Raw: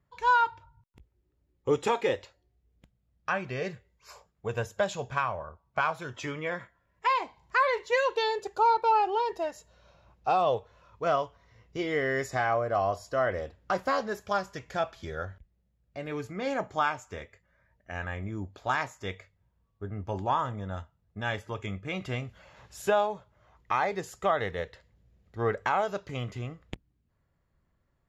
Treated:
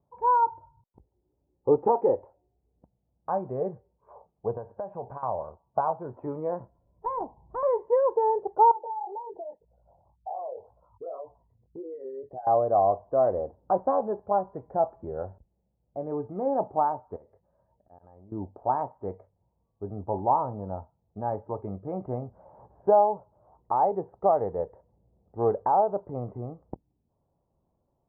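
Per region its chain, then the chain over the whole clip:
4.57–5.23 s: peaking EQ 1.9 kHz +7.5 dB 1.9 oct + compression 4:1, threshold -36 dBFS
6.60–7.63 s: tilt EQ -4 dB/octave + valve stage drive 25 dB, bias 0.75
8.71–12.47 s: resonances exaggerated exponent 3 + chorus 1.9 Hz, delay 16 ms, depth 7.3 ms + compression 3:1, threshold -43 dBFS
17.16–18.32 s: slow attack 234 ms + compression, threshold -51 dBFS
whole clip: elliptic low-pass 870 Hz, stop band 80 dB; tilt EQ +3 dB/octave; trim +8.5 dB

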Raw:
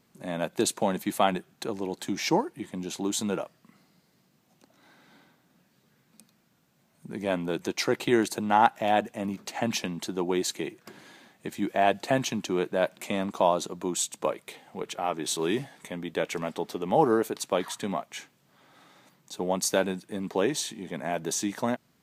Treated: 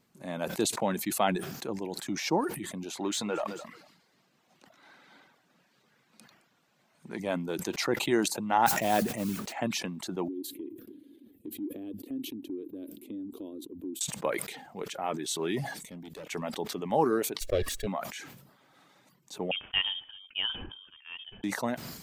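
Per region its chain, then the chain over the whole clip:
2.97–7.20 s: treble shelf 8.3 kHz -4.5 dB + overdrive pedal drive 13 dB, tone 4.6 kHz, clips at -16 dBFS + feedback delay 216 ms, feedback 24%, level -20 dB
8.66–9.53 s: bass shelf 290 Hz +6 dB + modulation noise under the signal 14 dB
10.28–14.01 s: FFT filter 100 Hz 0 dB, 160 Hz -15 dB, 280 Hz +14 dB, 470 Hz -4 dB, 720 Hz -27 dB, 1.8 kHz -26 dB, 3.3 kHz -14 dB, 6.5 kHz -26 dB, 12 kHz -3 dB + compression 2:1, threshold -40 dBFS
15.74–16.26 s: peaking EQ 1.1 kHz -14.5 dB 2.4 oct + overload inside the chain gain 35.5 dB
17.41–17.87 s: comb filter that takes the minimum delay 1.8 ms + bass shelf 490 Hz +9.5 dB + static phaser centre 390 Hz, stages 4
19.51–21.44 s: de-hum 389.7 Hz, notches 2 + frequency inversion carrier 3.4 kHz + upward expansion 2.5:1, over -36 dBFS
whole clip: reverb removal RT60 0.56 s; decay stretcher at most 60 dB/s; trim -3.5 dB

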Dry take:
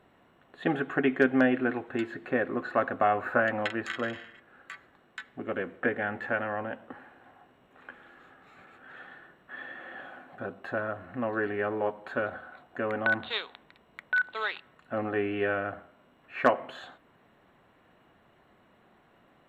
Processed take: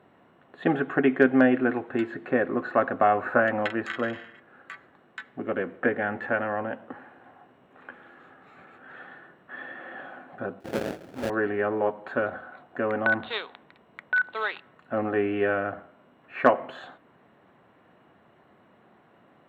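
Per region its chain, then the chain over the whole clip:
10.60–11.30 s: high-pass 450 Hz 6 dB/octave + level-controlled noise filter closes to 1.1 kHz, open at -33 dBFS + sample-rate reducer 1.1 kHz, jitter 20%
whole clip: high-pass 100 Hz; treble shelf 3 kHz -10 dB; trim +4.5 dB

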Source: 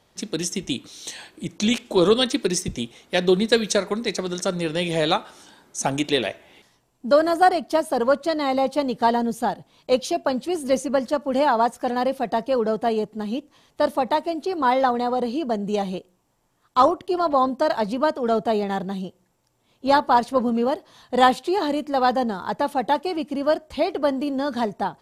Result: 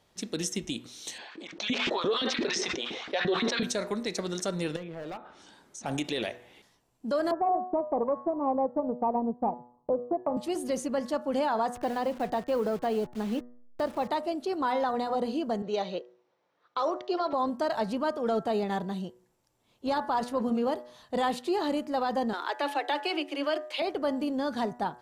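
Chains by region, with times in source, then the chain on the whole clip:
1.18–3.63 s: low-pass 5.1 kHz 24 dB/octave + LFO high-pass saw up 5.8 Hz 210–2000 Hz + decay stretcher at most 31 dB/s
4.76–5.86 s: low-pass that closes with the level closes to 1.6 kHz, closed at -21.5 dBFS + hard clipper -20 dBFS + compression 2.5:1, threshold -36 dBFS
7.31–10.37 s: steep low-pass 1.2 kHz 96 dB/octave + transient shaper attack +9 dB, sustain -7 dB
11.75–14.09 s: send-on-delta sampling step -36.5 dBFS + treble shelf 7.2 kHz -8 dB + three bands compressed up and down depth 40%
15.62–17.33 s: level-controlled noise filter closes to 2.9 kHz, open at -12 dBFS + cabinet simulation 240–7300 Hz, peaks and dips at 240 Hz -8 dB, 510 Hz +8 dB, 1.4 kHz +4 dB, 2.2 kHz +4 dB, 3.9 kHz +7 dB, 5.7 kHz +6 dB
22.33–23.82 s: Chebyshev high-pass 280 Hz, order 10 + peaking EQ 2.6 kHz +12.5 dB 1.6 oct
whole clip: de-hum 122 Hz, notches 16; peak limiter -15 dBFS; trim -5 dB

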